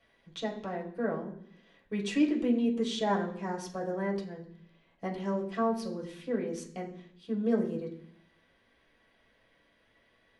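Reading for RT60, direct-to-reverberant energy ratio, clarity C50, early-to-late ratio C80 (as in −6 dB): 0.65 s, −3.0 dB, 9.0 dB, 12.0 dB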